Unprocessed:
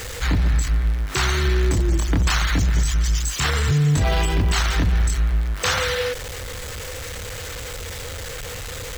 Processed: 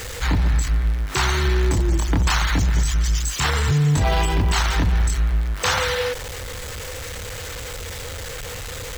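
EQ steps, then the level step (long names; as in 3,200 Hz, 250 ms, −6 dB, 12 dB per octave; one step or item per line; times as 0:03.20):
dynamic equaliser 900 Hz, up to +6 dB, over −44 dBFS, Q 3.2
0.0 dB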